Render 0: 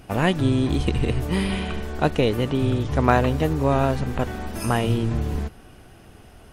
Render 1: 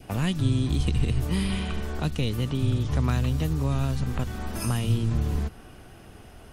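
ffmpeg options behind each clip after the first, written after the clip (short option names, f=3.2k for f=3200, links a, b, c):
-filter_complex "[0:a]adynamicequalizer=threshold=0.0112:dfrequency=1200:dqfactor=2.2:tfrequency=1200:tqfactor=2.2:attack=5:release=100:ratio=0.375:range=3:mode=boostabove:tftype=bell,acrossover=split=210|3000[a][b][c];[b]acompressor=threshold=-35dB:ratio=6[d];[a][d][c]amix=inputs=3:normalize=0"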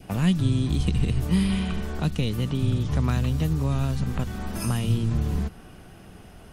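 -af "equalizer=f=180:w=4.1:g=7.5"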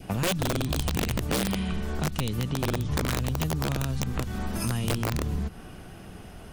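-af "aeval=exprs='(mod(6.31*val(0)+1,2)-1)/6.31':c=same,acompressor=threshold=-28dB:ratio=4,volume=2.5dB"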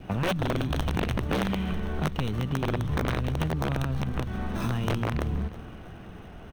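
-filter_complex "[0:a]acrossover=split=3600[a][b];[b]acrusher=samples=18:mix=1:aa=0.000001[c];[a][c]amix=inputs=2:normalize=0,aecho=1:1:325|650|975|1300:0.141|0.0593|0.0249|0.0105"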